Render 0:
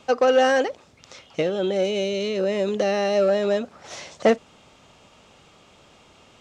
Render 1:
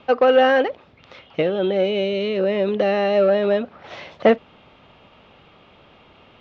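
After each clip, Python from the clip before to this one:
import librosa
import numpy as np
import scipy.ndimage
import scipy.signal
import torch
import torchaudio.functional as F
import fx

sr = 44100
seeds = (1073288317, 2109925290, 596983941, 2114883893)

y = scipy.signal.sosfilt(scipy.signal.butter(4, 3500.0, 'lowpass', fs=sr, output='sos'), x)
y = y * librosa.db_to_amplitude(3.0)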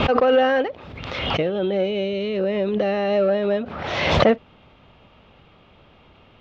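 y = fx.low_shelf(x, sr, hz=130.0, db=10.0)
y = fx.pre_swell(y, sr, db_per_s=37.0)
y = y * librosa.db_to_amplitude(-3.5)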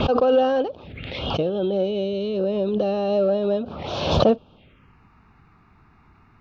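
y = fx.env_phaser(x, sr, low_hz=510.0, high_hz=2000.0, full_db=-24.0)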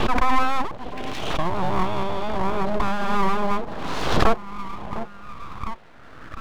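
y = fx.dynamic_eq(x, sr, hz=4100.0, q=1.1, threshold_db=-47.0, ratio=4.0, max_db=-5)
y = fx.echo_stepped(y, sr, ms=705, hz=310.0, octaves=0.7, feedback_pct=70, wet_db=-8.5)
y = np.abs(y)
y = y * librosa.db_to_amplitude(2.5)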